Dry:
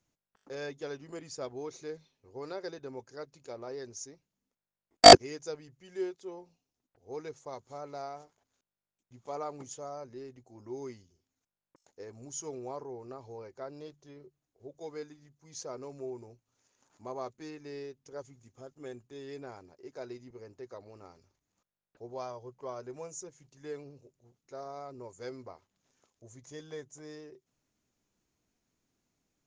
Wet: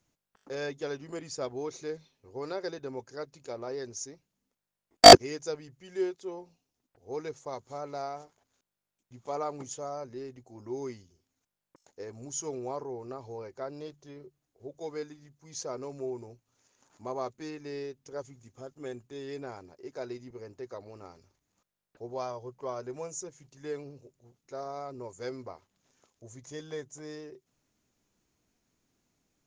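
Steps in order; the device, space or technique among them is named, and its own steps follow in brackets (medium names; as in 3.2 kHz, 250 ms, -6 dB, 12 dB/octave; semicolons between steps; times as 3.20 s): parallel distortion (in parallel at -4.5 dB: hard clipper -15 dBFS, distortion -6 dB)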